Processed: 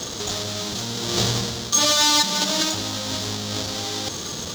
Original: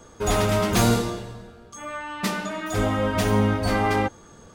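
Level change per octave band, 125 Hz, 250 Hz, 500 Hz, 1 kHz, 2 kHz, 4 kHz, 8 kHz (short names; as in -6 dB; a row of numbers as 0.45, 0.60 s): -5.5, -5.0, -5.0, -2.0, -1.0, +13.5, +12.0 dB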